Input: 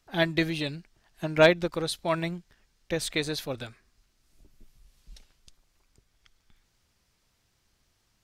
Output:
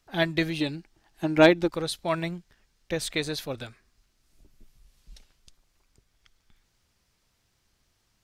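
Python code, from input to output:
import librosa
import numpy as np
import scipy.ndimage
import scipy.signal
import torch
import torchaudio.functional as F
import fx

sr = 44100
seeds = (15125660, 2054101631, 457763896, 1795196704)

y = fx.small_body(x, sr, hz=(320.0, 820.0), ring_ms=45, db=9, at=(0.6, 1.7))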